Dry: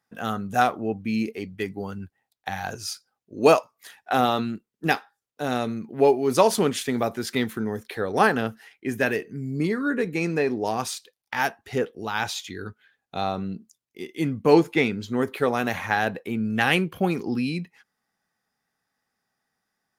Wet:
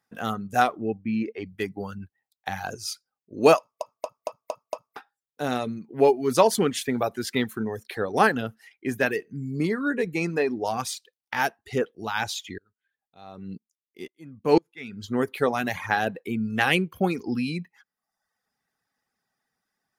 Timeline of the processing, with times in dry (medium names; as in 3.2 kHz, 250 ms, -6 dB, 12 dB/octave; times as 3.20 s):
0.97–1.45 s: low-pass 1.6 kHz -> 3.6 kHz
3.58 s: stutter in place 0.23 s, 6 plays
12.58–15.04 s: sawtooth tremolo in dB swelling 2 Hz, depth 28 dB
whole clip: reverb removal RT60 0.76 s